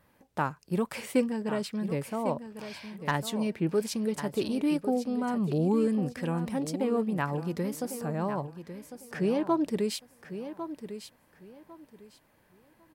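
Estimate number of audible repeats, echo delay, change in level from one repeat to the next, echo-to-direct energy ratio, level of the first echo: 2, 1101 ms, -13.0 dB, -11.0 dB, -11.0 dB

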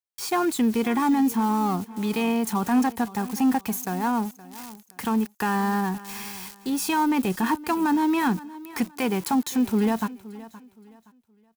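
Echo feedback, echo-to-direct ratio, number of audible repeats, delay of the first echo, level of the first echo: 30%, -17.5 dB, 2, 520 ms, -18.0 dB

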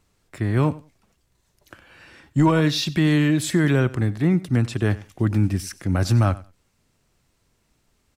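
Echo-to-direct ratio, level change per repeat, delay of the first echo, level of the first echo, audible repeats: -19.0 dB, -15.5 dB, 93 ms, -19.0 dB, 2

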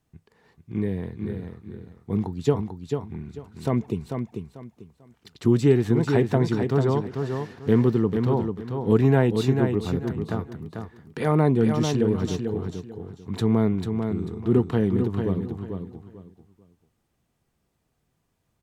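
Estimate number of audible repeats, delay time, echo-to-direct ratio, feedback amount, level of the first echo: 3, 443 ms, -5.5 dB, 25%, -6.0 dB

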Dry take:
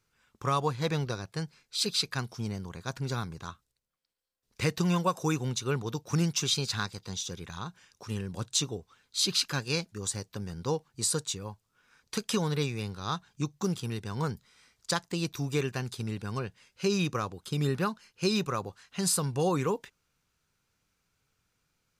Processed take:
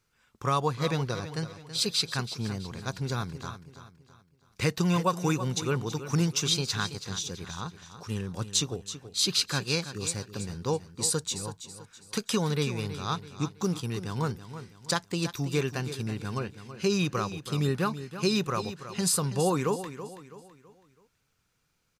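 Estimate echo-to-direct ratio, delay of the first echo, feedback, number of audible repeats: -11.5 dB, 328 ms, 39%, 3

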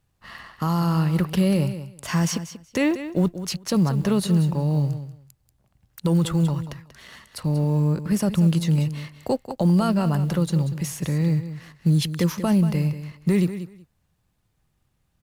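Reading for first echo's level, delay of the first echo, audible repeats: -12.0 dB, 187 ms, 2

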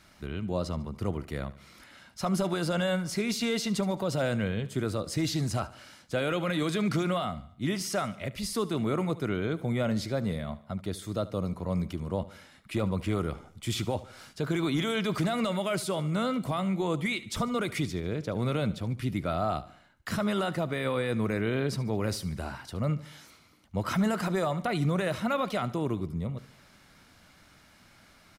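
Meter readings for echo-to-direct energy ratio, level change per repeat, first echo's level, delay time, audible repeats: -16.5 dB, -6.5 dB, -17.5 dB, 73 ms, 3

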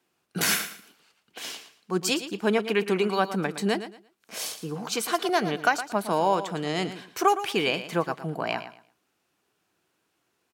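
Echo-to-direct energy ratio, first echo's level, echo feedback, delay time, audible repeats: -11.5 dB, -12.0 dB, 24%, 114 ms, 2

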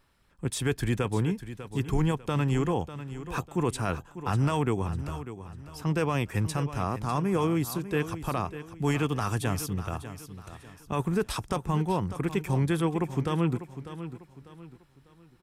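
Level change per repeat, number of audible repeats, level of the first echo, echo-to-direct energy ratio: -9.0 dB, 3, -12.5 dB, -12.0 dB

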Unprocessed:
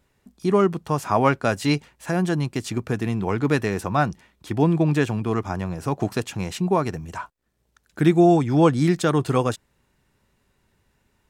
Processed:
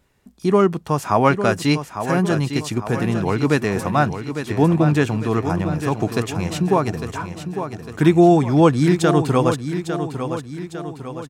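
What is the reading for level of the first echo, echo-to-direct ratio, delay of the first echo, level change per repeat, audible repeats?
-9.0 dB, -8.0 dB, 853 ms, -6.0 dB, 5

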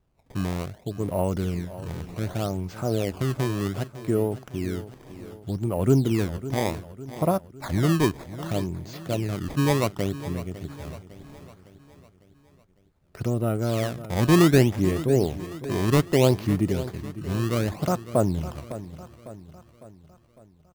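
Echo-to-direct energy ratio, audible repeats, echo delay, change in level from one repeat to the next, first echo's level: -13.0 dB, 4, 554 ms, -6.0 dB, -14.5 dB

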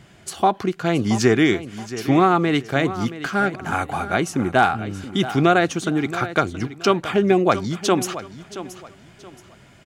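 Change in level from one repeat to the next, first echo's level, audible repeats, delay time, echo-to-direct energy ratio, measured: -11.0 dB, -14.0 dB, 2, 675 ms, -13.5 dB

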